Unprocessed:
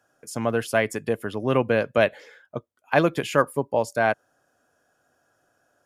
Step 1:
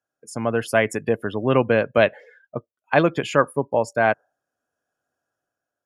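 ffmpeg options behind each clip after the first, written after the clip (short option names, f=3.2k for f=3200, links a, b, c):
-af "afftdn=nr=19:nf=-42,dynaudnorm=f=180:g=7:m=6dB"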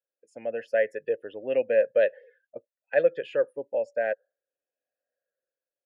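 -filter_complex "[0:a]afftfilt=real='re*pow(10,7/40*sin(2*PI*(0.63*log(max(b,1)*sr/1024/100)/log(2)-(-0.9)*(pts-256)/sr)))':imag='im*pow(10,7/40*sin(2*PI*(0.63*log(max(b,1)*sr/1024/100)/log(2)-(-0.9)*(pts-256)/sr)))':win_size=1024:overlap=0.75,asplit=3[a][b][c];[a]bandpass=f=530:t=q:w=8,volume=0dB[d];[b]bandpass=f=1.84k:t=q:w=8,volume=-6dB[e];[c]bandpass=f=2.48k:t=q:w=8,volume=-9dB[f];[d][e][f]amix=inputs=3:normalize=0"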